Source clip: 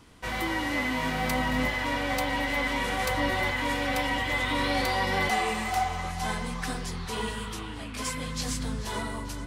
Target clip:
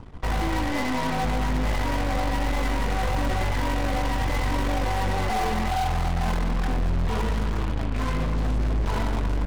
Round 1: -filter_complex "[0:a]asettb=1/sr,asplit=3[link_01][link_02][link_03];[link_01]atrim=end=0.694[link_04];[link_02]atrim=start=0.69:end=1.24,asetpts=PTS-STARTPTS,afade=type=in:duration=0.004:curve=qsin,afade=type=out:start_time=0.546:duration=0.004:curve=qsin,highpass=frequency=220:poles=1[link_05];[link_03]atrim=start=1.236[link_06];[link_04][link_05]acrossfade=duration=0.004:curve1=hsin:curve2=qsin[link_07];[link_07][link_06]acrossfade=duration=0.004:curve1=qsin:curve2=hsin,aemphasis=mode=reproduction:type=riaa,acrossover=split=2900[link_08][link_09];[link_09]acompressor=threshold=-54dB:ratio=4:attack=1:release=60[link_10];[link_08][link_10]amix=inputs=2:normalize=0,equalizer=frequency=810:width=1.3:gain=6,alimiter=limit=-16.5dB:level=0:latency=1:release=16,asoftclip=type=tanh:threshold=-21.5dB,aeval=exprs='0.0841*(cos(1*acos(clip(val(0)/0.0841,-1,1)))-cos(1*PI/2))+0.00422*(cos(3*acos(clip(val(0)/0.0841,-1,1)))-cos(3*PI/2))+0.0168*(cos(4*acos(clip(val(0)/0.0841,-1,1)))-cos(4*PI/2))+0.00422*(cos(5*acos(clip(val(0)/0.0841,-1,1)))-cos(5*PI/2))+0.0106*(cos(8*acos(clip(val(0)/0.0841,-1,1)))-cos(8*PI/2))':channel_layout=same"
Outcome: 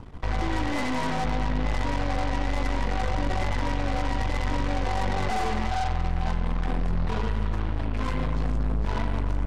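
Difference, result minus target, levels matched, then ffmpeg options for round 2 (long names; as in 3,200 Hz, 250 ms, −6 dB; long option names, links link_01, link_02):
soft clipping: distortion +12 dB
-filter_complex "[0:a]asettb=1/sr,asplit=3[link_01][link_02][link_03];[link_01]atrim=end=0.694[link_04];[link_02]atrim=start=0.69:end=1.24,asetpts=PTS-STARTPTS,afade=type=in:duration=0.004:curve=qsin,afade=type=out:start_time=0.546:duration=0.004:curve=qsin,highpass=frequency=220:poles=1[link_05];[link_03]atrim=start=1.236[link_06];[link_04][link_05]acrossfade=duration=0.004:curve1=hsin:curve2=qsin[link_07];[link_07][link_06]acrossfade=duration=0.004:curve1=qsin:curve2=hsin,aemphasis=mode=reproduction:type=riaa,acrossover=split=2900[link_08][link_09];[link_09]acompressor=threshold=-54dB:ratio=4:attack=1:release=60[link_10];[link_08][link_10]amix=inputs=2:normalize=0,equalizer=frequency=810:width=1.3:gain=6,alimiter=limit=-16.5dB:level=0:latency=1:release=16,asoftclip=type=tanh:threshold=-13.5dB,aeval=exprs='0.0841*(cos(1*acos(clip(val(0)/0.0841,-1,1)))-cos(1*PI/2))+0.00422*(cos(3*acos(clip(val(0)/0.0841,-1,1)))-cos(3*PI/2))+0.0168*(cos(4*acos(clip(val(0)/0.0841,-1,1)))-cos(4*PI/2))+0.00422*(cos(5*acos(clip(val(0)/0.0841,-1,1)))-cos(5*PI/2))+0.0106*(cos(8*acos(clip(val(0)/0.0841,-1,1)))-cos(8*PI/2))':channel_layout=same"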